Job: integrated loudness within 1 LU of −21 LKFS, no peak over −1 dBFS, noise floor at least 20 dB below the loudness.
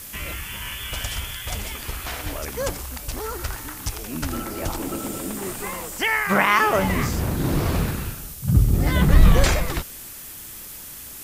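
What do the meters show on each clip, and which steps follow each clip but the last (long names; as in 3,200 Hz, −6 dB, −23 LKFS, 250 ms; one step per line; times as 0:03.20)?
background noise floor −38 dBFS; target noise floor −44 dBFS; integrated loudness −23.5 LKFS; sample peak −3.0 dBFS; target loudness −21.0 LKFS
→ noise reduction from a noise print 6 dB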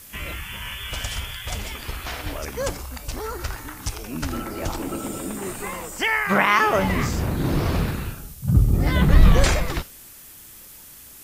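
background noise floor −44 dBFS; integrated loudness −24.0 LKFS; sample peak −3.0 dBFS; target loudness −21.0 LKFS
→ level +3 dB
brickwall limiter −1 dBFS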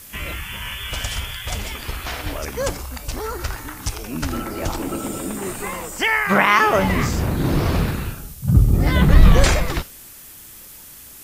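integrated loudness −21.0 LKFS; sample peak −1.0 dBFS; background noise floor −41 dBFS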